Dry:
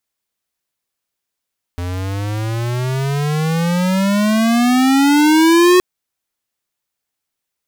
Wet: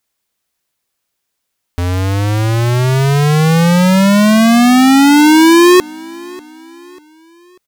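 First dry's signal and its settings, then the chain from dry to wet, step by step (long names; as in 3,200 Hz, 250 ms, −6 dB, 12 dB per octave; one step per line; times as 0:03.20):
pitch glide with a swell square, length 4.02 s, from 86.8 Hz, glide +25 semitones, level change +13.5 dB, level −9 dB
in parallel at +2.5 dB: brickwall limiter −16.5 dBFS
on the sum: repeating echo 592 ms, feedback 43%, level −23 dB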